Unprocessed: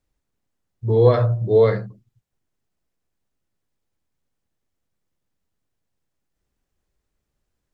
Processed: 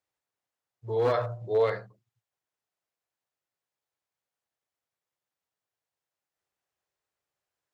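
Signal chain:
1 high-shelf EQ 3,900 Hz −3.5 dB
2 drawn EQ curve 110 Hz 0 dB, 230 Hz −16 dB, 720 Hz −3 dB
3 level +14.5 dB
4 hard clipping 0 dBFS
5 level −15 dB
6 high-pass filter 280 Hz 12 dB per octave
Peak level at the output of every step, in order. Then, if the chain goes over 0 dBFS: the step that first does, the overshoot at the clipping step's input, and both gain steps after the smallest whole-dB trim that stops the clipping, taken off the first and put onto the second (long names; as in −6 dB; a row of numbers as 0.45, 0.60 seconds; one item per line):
−4.0, −6.5, +8.0, 0.0, −15.0, −14.5 dBFS
step 3, 8.0 dB
step 3 +6.5 dB, step 5 −7 dB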